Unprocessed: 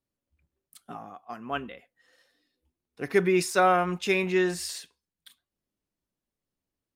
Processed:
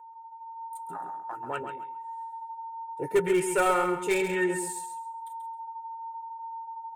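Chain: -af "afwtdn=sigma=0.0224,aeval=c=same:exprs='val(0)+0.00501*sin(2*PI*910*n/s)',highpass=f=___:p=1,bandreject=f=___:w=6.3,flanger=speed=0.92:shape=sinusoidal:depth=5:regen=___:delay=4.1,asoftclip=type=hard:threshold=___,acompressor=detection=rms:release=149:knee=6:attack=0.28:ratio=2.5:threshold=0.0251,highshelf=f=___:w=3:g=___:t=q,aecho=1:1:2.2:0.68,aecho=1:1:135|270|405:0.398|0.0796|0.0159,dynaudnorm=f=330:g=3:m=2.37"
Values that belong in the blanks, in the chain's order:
140, 220, -41, 0.075, 6.5k, 8.5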